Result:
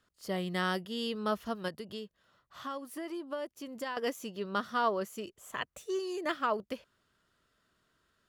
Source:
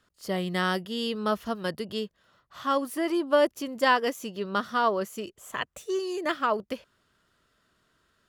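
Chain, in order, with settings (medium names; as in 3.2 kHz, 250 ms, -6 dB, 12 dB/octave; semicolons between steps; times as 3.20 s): 1.68–3.97 s: compression 3:1, threshold -34 dBFS, peak gain reduction 13 dB; trim -5 dB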